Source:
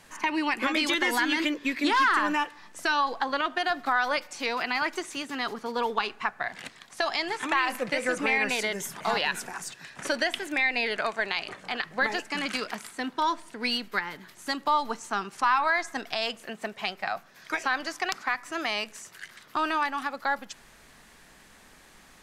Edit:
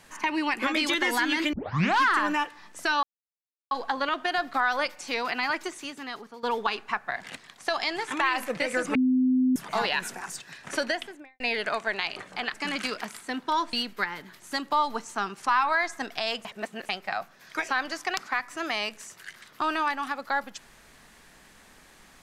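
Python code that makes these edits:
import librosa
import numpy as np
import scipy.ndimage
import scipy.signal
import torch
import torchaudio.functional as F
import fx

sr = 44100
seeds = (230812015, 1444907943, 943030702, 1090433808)

y = fx.studio_fade_out(x, sr, start_s=10.12, length_s=0.6)
y = fx.edit(y, sr, fx.tape_start(start_s=1.53, length_s=0.48),
    fx.insert_silence(at_s=3.03, length_s=0.68),
    fx.fade_out_to(start_s=4.82, length_s=0.93, floor_db=-13.0),
    fx.bleep(start_s=8.27, length_s=0.61, hz=256.0, db=-19.0),
    fx.cut(start_s=11.86, length_s=0.38),
    fx.cut(start_s=13.43, length_s=0.25),
    fx.reverse_span(start_s=16.4, length_s=0.44), tone=tone)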